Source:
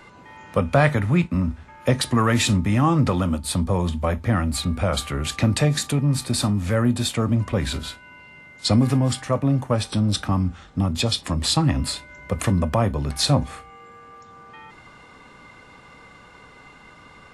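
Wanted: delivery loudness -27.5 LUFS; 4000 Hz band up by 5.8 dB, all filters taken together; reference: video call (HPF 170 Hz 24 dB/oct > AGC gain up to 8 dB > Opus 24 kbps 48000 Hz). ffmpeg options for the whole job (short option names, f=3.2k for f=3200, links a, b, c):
-af "highpass=f=170:w=0.5412,highpass=f=170:w=1.3066,equalizer=f=4k:t=o:g=6.5,dynaudnorm=m=8dB,volume=-4.5dB" -ar 48000 -c:a libopus -b:a 24k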